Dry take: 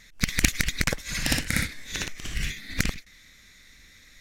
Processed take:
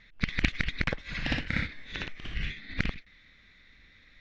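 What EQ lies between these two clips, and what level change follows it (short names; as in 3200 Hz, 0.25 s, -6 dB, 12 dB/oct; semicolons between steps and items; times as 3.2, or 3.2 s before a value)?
LPF 3700 Hz 24 dB/oct; -3.5 dB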